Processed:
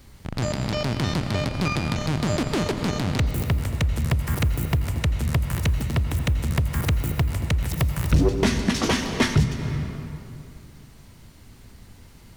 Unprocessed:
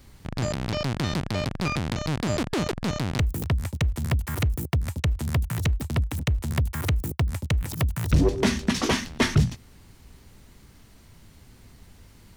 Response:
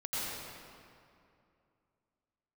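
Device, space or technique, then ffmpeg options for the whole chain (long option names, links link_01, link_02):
ducked reverb: -filter_complex "[0:a]asplit=3[link_01][link_02][link_03];[1:a]atrim=start_sample=2205[link_04];[link_02][link_04]afir=irnorm=-1:irlink=0[link_05];[link_03]apad=whole_len=545497[link_06];[link_05][link_06]sidechaincompress=threshold=-24dB:ratio=8:attack=47:release=491,volume=-8dB[link_07];[link_01][link_07]amix=inputs=2:normalize=0"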